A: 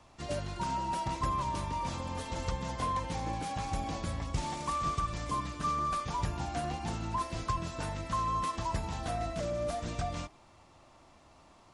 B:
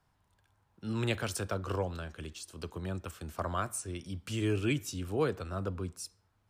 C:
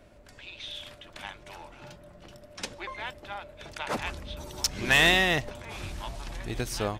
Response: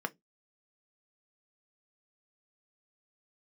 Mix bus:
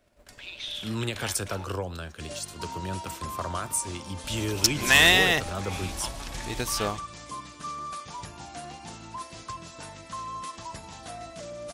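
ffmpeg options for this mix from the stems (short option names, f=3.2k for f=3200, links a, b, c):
-filter_complex "[0:a]highpass=f=160:p=1,adelay=2000,volume=-5dB[a];[1:a]alimiter=limit=-23.5dB:level=0:latency=1:release=117,volume=2.5dB[b];[2:a]volume=-1dB,asplit=3[c][d][e];[c]atrim=end=1.65,asetpts=PTS-STARTPTS,afade=t=out:st=1.646:d=0.004:c=hsin[f];[d]atrim=start=1.65:end=4.24,asetpts=PTS-STARTPTS,volume=0[g];[e]atrim=start=4.24,asetpts=PTS-STARTPTS,afade=t=in:d=0.004:c=hsin[h];[f][g][h]concat=n=3:v=0:a=1,asplit=2[i][j];[j]volume=-17dB[k];[3:a]atrim=start_sample=2205[l];[k][l]afir=irnorm=-1:irlink=0[m];[a][b][i][m]amix=inputs=4:normalize=0,agate=range=-13dB:threshold=-53dB:ratio=16:detection=peak,highshelf=f=3.1k:g=8.5"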